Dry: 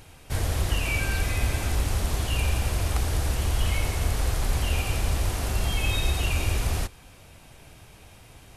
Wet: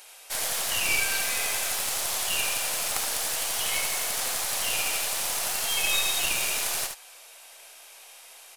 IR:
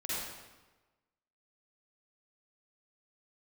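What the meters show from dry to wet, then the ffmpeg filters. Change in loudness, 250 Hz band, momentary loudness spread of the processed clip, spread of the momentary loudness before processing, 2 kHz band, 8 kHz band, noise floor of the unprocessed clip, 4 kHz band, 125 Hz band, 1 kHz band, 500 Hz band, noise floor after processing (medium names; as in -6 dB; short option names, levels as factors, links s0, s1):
+1.5 dB, -12.5 dB, 4 LU, 2 LU, +3.5 dB, +9.5 dB, -50 dBFS, +6.0 dB, -25.5 dB, +0.5 dB, -3.0 dB, -49 dBFS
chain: -filter_complex "[0:a]highpass=f=530:w=0.5412,highpass=f=530:w=1.3066,highshelf=f=3200:g=11,aeval=exprs='0.335*(cos(1*acos(clip(val(0)/0.335,-1,1)))-cos(1*PI/2))+0.0266*(cos(4*acos(clip(val(0)/0.335,-1,1)))-cos(4*PI/2))+0.0596*(cos(6*acos(clip(val(0)/0.335,-1,1)))-cos(6*PI/2))':c=same,asplit=2[s0][s1];[s1]aecho=0:1:73:0.501[s2];[s0][s2]amix=inputs=2:normalize=0,volume=0.841"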